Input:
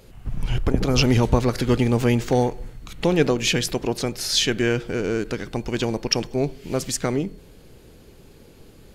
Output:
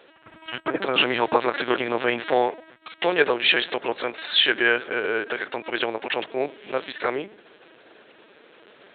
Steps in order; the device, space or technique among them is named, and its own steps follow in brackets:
talking toy (linear-prediction vocoder at 8 kHz pitch kept; high-pass filter 550 Hz 12 dB per octave; parametric band 1,600 Hz +5.5 dB 0.47 octaves)
level +4.5 dB

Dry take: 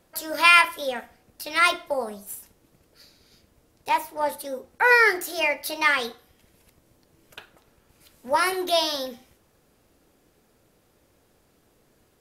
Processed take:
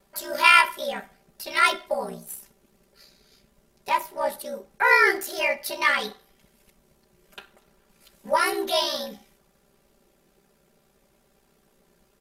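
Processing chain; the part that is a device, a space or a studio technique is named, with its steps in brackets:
ring-modulated robot voice (ring modulation 32 Hz; comb filter 5.1 ms, depth 84%)

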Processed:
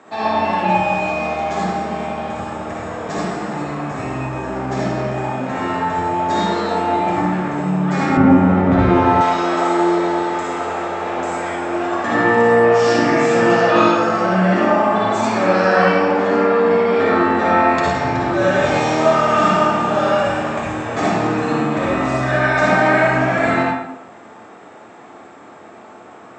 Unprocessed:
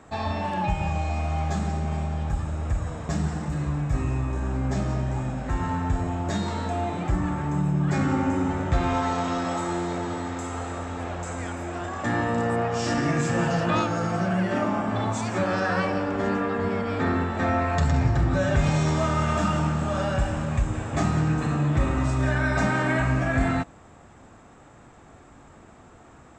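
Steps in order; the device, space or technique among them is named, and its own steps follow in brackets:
high-pass filter 66 Hz
supermarket ceiling speaker (band-pass filter 320–5,900 Hz; convolution reverb RT60 0.95 s, pre-delay 51 ms, DRR −5.5 dB)
0:08.17–0:09.21: RIAA equalisation playback
low-shelf EQ 150 Hz +4 dB
level +5 dB

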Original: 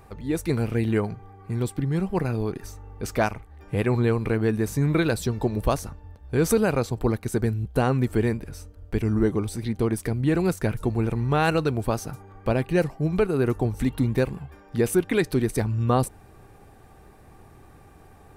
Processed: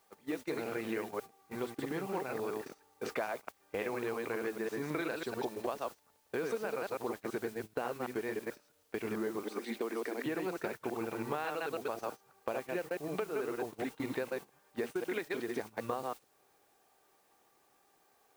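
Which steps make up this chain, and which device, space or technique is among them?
delay that plays each chunk backwards 109 ms, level −2 dB
0:09.43–0:10.26: Chebyshev high-pass filter 210 Hz, order 5
baby monitor (band-pass filter 450–3,300 Hz; downward compressor 8 to 1, threshold −33 dBFS, peak gain reduction 16 dB; white noise bed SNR 18 dB; noise gate −41 dBFS, range −17 dB)

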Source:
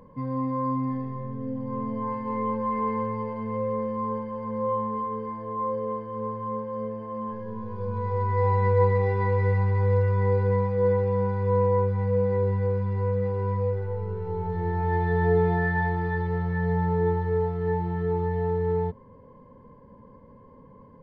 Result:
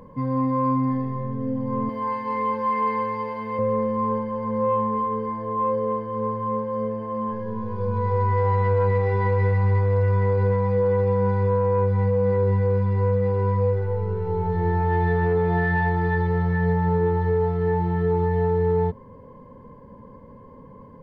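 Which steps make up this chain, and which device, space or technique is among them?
0:01.89–0:03.59: spectral tilt +3.5 dB per octave
soft clipper into limiter (soft clipping −13 dBFS, distortion −24 dB; brickwall limiter −19.5 dBFS, peak gain reduction 5.5 dB)
level +5.5 dB

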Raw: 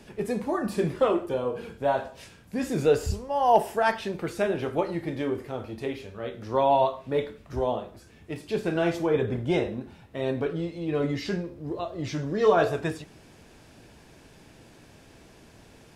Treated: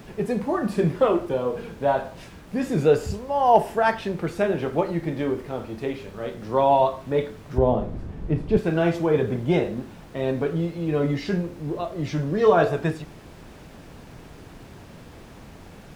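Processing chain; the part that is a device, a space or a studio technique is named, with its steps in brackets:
car interior (parametric band 160 Hz +6.5 dB 0.56 octaves; high-shelf EQ 3,600 Hz −7 dB; brown noise bed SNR 12 dB)
0:07.58–0:08.57: spectral tilt −3.5 dB per octave
high-pass filter 130 Hz 6 dB per octave
level +3.5 dB

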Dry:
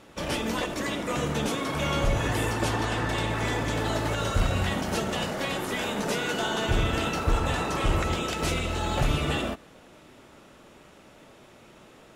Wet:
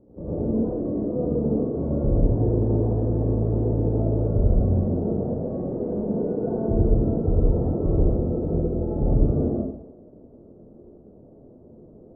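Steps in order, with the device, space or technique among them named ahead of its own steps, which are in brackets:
next room (low-pass filter 490 Hz 24 dB per octave; convolution reverb RT60 0.80 s, pre-delay 72 ms, DRR −7.5 dB)

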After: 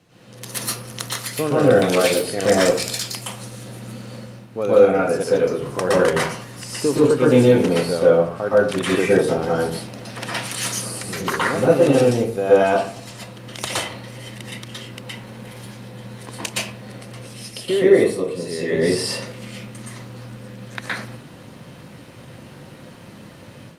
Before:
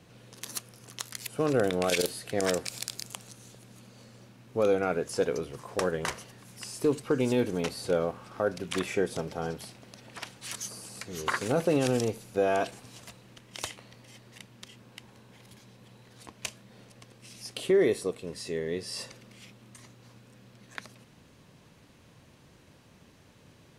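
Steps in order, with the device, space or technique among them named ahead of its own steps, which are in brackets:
far-field microphone of a smart speaker (convolution reverb RT60 0.50 s, pre-delay 113 ms, DRR −7.5 dB; high-pass filter 90 Hz; automatic gain control gain up to 11 dB; level −1.5 dB; Opus 48 kbit/s 48,000 Hz)

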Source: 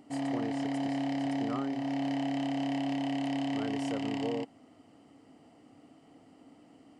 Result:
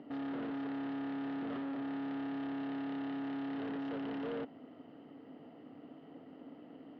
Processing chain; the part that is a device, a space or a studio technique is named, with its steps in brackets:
guitar amplifier (tube saturation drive 45 dB, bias 0.55; bass and treble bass −7 dB, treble −13 dB; loudspeaker in its box 84–3,800 Hz, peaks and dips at 160 Hz +6 dB, 250 Hz +4 dB, 440 Hz +3 dB, 780 Hz −4 dB, 1,100 Hz −4 dB, 2,300 Hz −7 dB)
level +7.5 dB

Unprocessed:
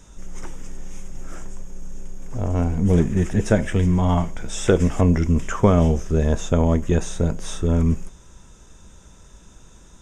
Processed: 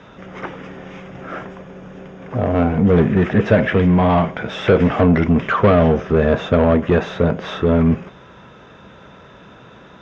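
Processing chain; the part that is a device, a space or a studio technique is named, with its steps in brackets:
overdrive pedal into a guitar cabinet (mid-hump overdrive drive 26 dB, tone 1,100 Hz, clips at −2 dBFS; loudspeaker in its box 83–3,800 Hz, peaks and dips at 120 Hz +5 dB, 340 Hz −4 dB, 910 Hz −5 dB)

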